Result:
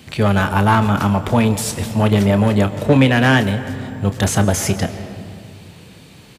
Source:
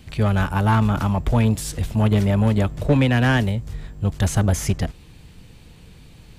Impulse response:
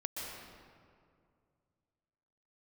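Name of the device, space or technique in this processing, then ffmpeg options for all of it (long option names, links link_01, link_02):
compressed reverb return: -filter_complex "[0:a]highpass=frequency=160:poles=1,asplit=2[link_01][link_02];[1:a]atrim=start_sample=2205[link_03];[link_02][link_03]afir=irnorm=-1:irlink=0,acompressor=threshold=-20dB:ratio=6,volume=-7.5dB[link_04];[link_01][link_04]amix=inputs=2:normalize=0,highpass=81,asplit=2[link_05][link_06];[link_06]adelay=30,volume=-12dB[link_07];[link_05][link_07]amix=inputs=2:normalize=0,volume=5dB"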